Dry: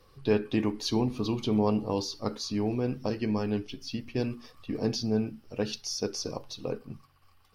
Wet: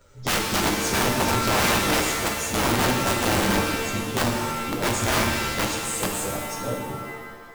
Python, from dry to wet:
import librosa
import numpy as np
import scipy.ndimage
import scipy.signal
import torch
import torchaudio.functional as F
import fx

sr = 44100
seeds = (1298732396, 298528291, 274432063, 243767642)

y = fx.partial_stretch(x, sr, pct=113)
y = (np.mod(10.0 ** (26.0 / 20.0) * y + 1.0, 2.0) - 1.0) / 10.0 ** (26.0 / 20.0)
y = fx.rev_shimmer(y, sr, seeds[0], rt60_s=1.4, semitones=7, shimmer_db=-2, drr_db=2.5)
y = F.gain(torch.from_numpy(y), 7.5).numpy()